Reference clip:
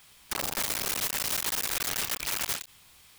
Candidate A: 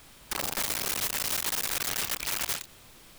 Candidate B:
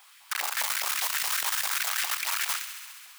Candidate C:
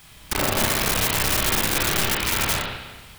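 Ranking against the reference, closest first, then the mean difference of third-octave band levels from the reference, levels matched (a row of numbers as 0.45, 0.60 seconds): A, C, B; 1.5, 5.5, 9.5 decibels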